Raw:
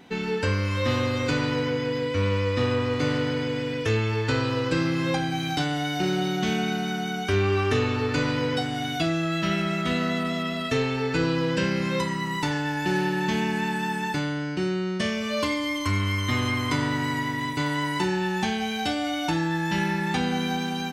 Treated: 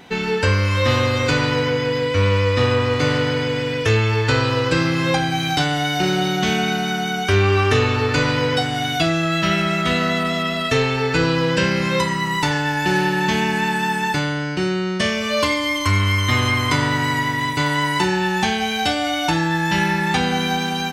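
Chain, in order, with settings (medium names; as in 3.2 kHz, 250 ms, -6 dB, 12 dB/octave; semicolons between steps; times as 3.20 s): peaking EQ 260 Hz -6 dB 1.2 oct; trim +8.5 dB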